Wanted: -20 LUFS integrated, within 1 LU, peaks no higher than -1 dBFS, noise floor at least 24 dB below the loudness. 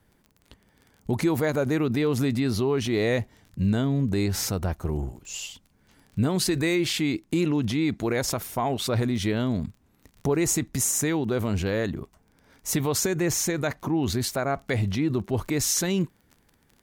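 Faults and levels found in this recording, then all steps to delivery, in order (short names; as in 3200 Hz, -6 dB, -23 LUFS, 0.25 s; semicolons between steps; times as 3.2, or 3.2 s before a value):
ticks 25/s; loudness -26.0 LUFS; peak -13.0 dBFS; loudness target -20.0 LUFS
-> de-click; gain +6 dB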